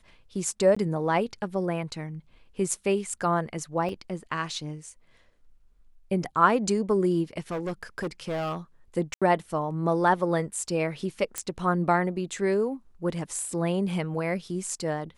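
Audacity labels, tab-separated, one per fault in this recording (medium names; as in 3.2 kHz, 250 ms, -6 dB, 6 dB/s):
0.750000	0.770000	dropout 15 ms
3.890000	3.890000	dropout 2.5 ms
7.510000	8.570000	clipped -26.5 dBFS
9.140000	9.220000	dropout 76 ms
11.380000	11.380000	pop -13 dBFS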